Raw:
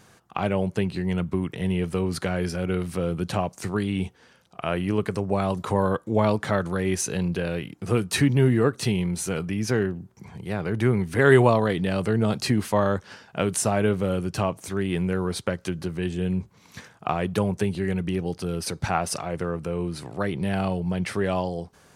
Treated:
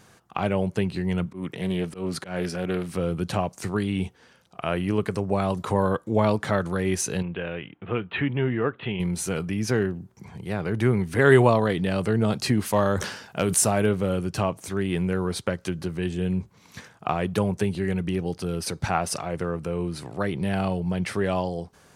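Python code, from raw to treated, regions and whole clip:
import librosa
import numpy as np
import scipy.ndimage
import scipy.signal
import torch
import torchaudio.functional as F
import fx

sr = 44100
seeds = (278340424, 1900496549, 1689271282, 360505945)

y = fx.chain(x, sr, fx.highpass(hz=140.0, slope=12),
    fx.auto_swell(attack_ms=134.0),
    fx.doppler_dist(depth_ms=0.17), at=(1.26, 2.95))
y = fx.chain(y, sr, fx.steep_lowpass(hz=3400.0, slope=72),
    fx.low_shelf(hz=450.0, db=-7.5), at=(7.22, 9.0))
y = fx.chain(y, sr, fx.high_shelf(hz=8600.0, db=10.5),
    fx.overload_stage(gain_db=10.5),
    fx.sustainer(db_per_s=74.0), at=(12.66, 13.86))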